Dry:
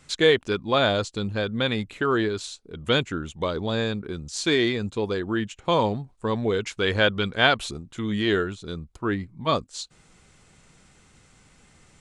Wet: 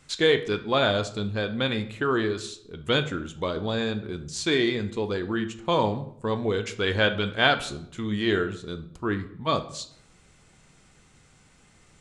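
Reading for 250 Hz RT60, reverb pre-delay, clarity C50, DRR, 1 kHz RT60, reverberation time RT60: 0.90 s, 10 ms, 13.5 dB, 8.5 dB, 0.65 s, 0.70 s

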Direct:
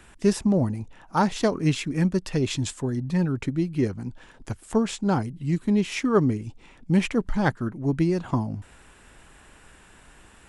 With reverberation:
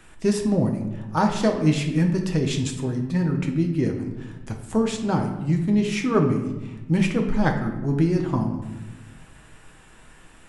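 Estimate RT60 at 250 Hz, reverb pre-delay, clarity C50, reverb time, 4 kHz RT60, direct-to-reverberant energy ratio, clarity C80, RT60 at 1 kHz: 1.6 s, 6 ms, 7.0 dB, 1.1 s, 0.70 s, 2.0 dB, 9.5 dB, 0.95 s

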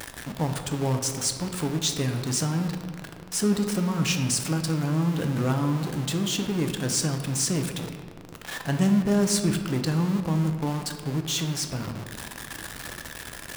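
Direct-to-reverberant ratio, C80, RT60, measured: 5.0 dB, 8.5 dB, 1.9 s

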